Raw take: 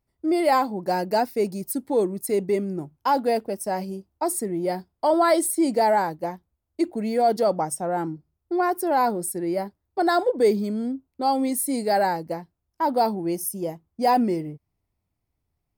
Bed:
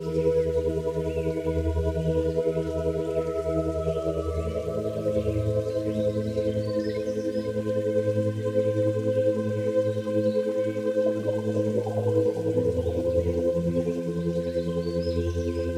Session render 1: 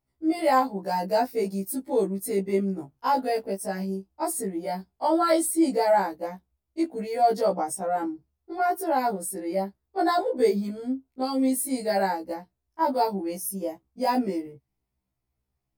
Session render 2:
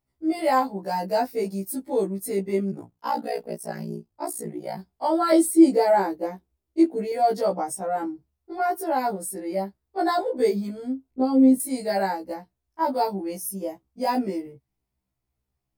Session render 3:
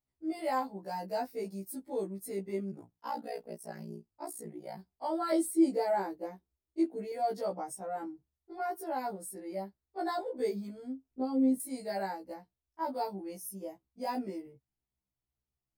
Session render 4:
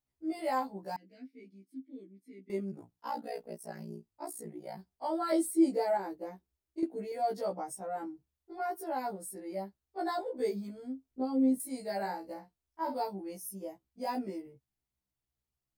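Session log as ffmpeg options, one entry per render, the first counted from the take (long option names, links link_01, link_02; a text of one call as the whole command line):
ffmpeg -i in.wav -af "afftfilt=real='re*1.73*eq(mod(b,3),0)':imag='im*1.73*eq(mod(b,3),0)':win_size=2048:overlap=0.75" out.wav
ffmpeg -i in.wav -filter_complex "[0:a]asplit=3[link_01][link_02][link_03];[link_01]afade=type=out:start_time=2.71:duration=0.02[link_04];[link_02]aeval=exprs='val(0)*sin(2*PI*30*n/s)':channel_layout=same,afade=type=in:start_time=2.71:duration=0.02,afade=type=out:start_time=4.77:duration=0.02[link_05];[link_03]afade=type=in:start_time=4.77:duration=0.02[link_06];[link_04][link_05][link_06]amix=inputs=3:normalize=0,asettb=1/sr,asplit=3[link_07][link_08][link_09];[link_07]atrim=end=5.324[link_10];[link_08]atrim=start=5.32:end=7.12,asetpts=PTS-STARTPTS,afade=type=in:duration=0.004:curve=qsin,afade=type=out:start_time=1.796:duration=0.004:curve=qsin,equalizer=frequency=360:width_type=o:width=0.77:gain=9[link_11];[link_09]atrim=start=7.116[link_12];[link_10][link_11]acrossfade=duration=0.004:curve1=hsin:curve2=qsin[link_13];[link_13][link_12]acrossfade=duration=0.004:curve1=qsin:curve2=hsin,asettb=1/sr,asplit=3[link_14][link_15][link_16];[link_14]atrim=end=11.114[link_17];[link_15]atrim=start=11.11:end=11.6,asetpts=PTS-STARTPTS,afade=type=in:duration=0.004:curve=qsin,afade=type=out:start_time=0.486:duration=0.004:curve=qsin,tiltshelf=frequency=880:gain=10[link_18];[link_16]atrim=start=11.596[link_19];[link_17][link_18]acrossfade=duration=0.004:curve1=hsin:curve2=qsin[link_20];[link_20][link_19]acrossfade=duration=0.004:curve1=qsin:curve2=hsin" out.wav
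ffmpeg -i in.wav -af "volume=-11dB" out.wav
ffmpeg -i in.wav -filter_complex "[0:a]asettb=1/sr,asplit=3[link_01][link_02][link_03];[link_01]atrim=end=0.964[link_04];[link_02]atrim=start=0.96:end=2.5,asetpts=PTS-STARTPTS,afade=type=in:duration=0.004:curve=qsin,afade=type=out:start_time=1.536:duration=0.004:curve=qsin,asplit=3[link_05][link_06][link_07];[link_05]bandpass=frequency=270:width_type=q:width=8,volume=0dB[link_08];[link_06]bandpass=frequency=2290:width_type=q:width=8,volume=-6dB[link_09];[link_07]bandpass=frequency=3010:width_type=q:width=8,volume=-9dB[link_10];[link_08][link_09][link_10]amix=inputs=3:normalize=0[link_11];[link_03]atrim=start=2.496[link_12];[link_04][link_11]acrossfade=duration=0.004:curve1=hsin:curve2=qsin[link_13];[link_13][link_12]acrossfade=duration=0.004:curve1=qsin:curve2=hsin,asettb=1/sr,asplit=3[link_14][link_15][link_16];[link_14]atrim=end=5.974[link_17];[link_15]atrim=start=5.97:end=6.83,asetpts=PTS-STARTPTS,afade=type=in:duration=0.004:curve=qsin,afade=type=out:start_time=0.856:duration=0.004:curve=qsin,acompressor=threshold=-34dB:ratio=4:attack=3.2:release=140:knee=1:detection=peak[link_18];[link_16]atrim=start=6.826[link_19];[link_17][link_18]acrossfade=duration=0.004:curve1=hsin:curve2=qsin[link_20];[link_20][link_19]acrossfade=duration=0.004:curve1=qsin:curve2=hsin,asettb=1/sr,asplit=3[link_21][link_22][link_23];[link_21]atrim=end=11.974[link_24];[link_22]atrim=start=11.97:end=13,asetpts=PTS-STARTPTS,afade=type=in:duration=0.004:curve=qsin,afade=type=out:start_time=1.026:duration=0.004:curve=qsin,asplit=2[link_25][link_26];[link_26]adelay=49,volume=-8dB[link_27];[link_25][link_27]amix=inputs=2:normalize=0,atrim=end_sample=45423[link_28];[link_23]atrim=start=12.996[link_29];[link_24][link_28]acrossfade=duration=0.004:curve1=hsin:curve2=qsin[link_30];[link_30][link_29]acrossfade=duration=0.004:curve1=qsin:curve2=hsin" out.wav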